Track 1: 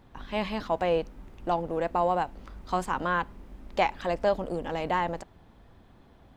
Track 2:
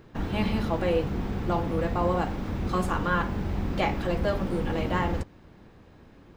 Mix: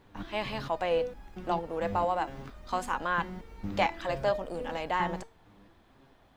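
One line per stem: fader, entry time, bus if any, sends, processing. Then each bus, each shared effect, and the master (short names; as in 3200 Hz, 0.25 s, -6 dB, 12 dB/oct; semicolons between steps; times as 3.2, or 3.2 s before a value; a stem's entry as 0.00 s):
-0.5 dB, 0.00 s, no send, low shelf 440 Hz -9.5 dB
+1.0 dB, 0.00 s, no send, stepped resonator 4.4 Hz 100–830 Hz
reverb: off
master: dry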